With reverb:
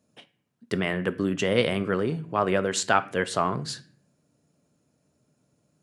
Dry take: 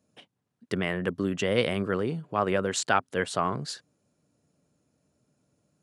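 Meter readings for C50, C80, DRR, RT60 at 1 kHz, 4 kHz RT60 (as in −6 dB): 17.5 dB, 21.0 dB, 12.0 dB, 0.40 s, 0.40 s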